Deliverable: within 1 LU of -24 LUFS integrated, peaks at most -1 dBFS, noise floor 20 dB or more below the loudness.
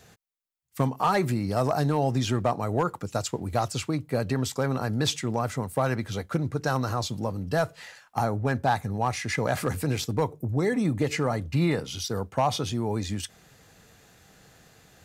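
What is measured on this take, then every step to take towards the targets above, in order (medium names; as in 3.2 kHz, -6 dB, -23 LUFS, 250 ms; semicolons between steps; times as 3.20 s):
clipped samples 0.3%; clipping level -15.5 dBFS; loudness -27.5 LUFS; peak level -15.5 dBFS; loudness target -24.0 LUFS
-> clip repair -15.5 dBFS; trim +3.5 dB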